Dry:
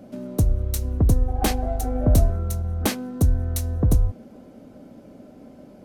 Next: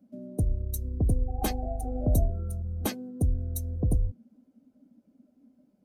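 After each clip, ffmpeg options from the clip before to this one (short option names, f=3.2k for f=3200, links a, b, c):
-af "afftdn=nr=20:nf=-29,highshelf=f=5.5k:g=8,volume=-7dB"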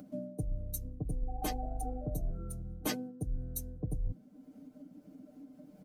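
-af "areverse,acompressor=threshold=-36dB:ratio=10,areverse,aecho=1:1:6.6:0.87,acompressor=mode=upward:threshold=-48dB:ratio=2.5,volume=3dB"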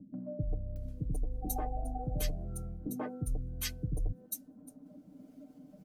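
-filter_complex "[0:a]acrossover=split=340|1500[a][b][c];[b]adelay=140[d];[c]adelay=760[e];[a][d][e]amix=inputs=3:normalize=0,volume=1.5dB"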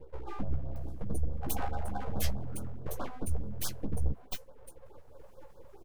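-filter_complex "[0:a]aeval=exprs='abs(val(0))':c=same,asplit=2[a][b];[b]adelay=15,volume=-6dB[c];[a][c]amix=inputs=2:normalize=0,afftfilt=real='re*(1-between(b*sr/1024,240*pow(2400/240,0.5+0.5*sin(2*PI*4.7*pts/sr))/1.41,240*pow(2400/240,0.5+0.5*sin(2*PI*4.7*pts/sr))*1.41))':imag='im*(1-between(b*sr/1024,240*pow(2400/240,0.5+0.5*sin(2*PI*4.7*pts/sr))/1.41,240*pow(2400/240,0.5+0.5*sin(2*PI*4.7*pts/sr))*1.41))':win_size=1024:overlap=0.75,volume=3dB"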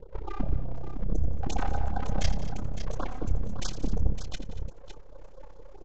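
-filter_complex "[0:a]tremolo=f=32:d=0.919,asplit=2[a][b];[b]aecho=0:1:83|176|234|559:0.211|0.126|0.141|0.299[c];[a][c]amix=inputs=2:normalize=0,aresample=16000,aresample=44100,volume=7dB"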